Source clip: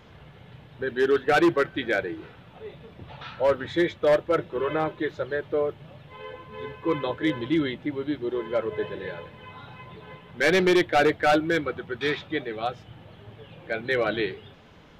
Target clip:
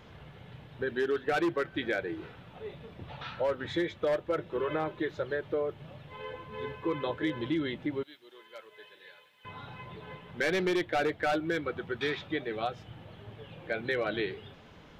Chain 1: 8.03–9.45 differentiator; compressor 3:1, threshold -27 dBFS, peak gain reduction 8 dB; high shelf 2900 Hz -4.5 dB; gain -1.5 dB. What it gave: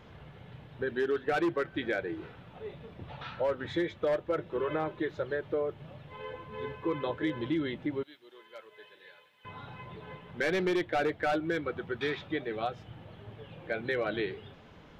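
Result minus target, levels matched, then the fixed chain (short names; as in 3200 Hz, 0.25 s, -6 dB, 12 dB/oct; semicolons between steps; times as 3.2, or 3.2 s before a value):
8000 Hz band -3.5 dB
8.03–9.45 differentiator; compressor 3:1, threshold -27 dBFS, peak gain reduction 8 dB; gain -1.5 dB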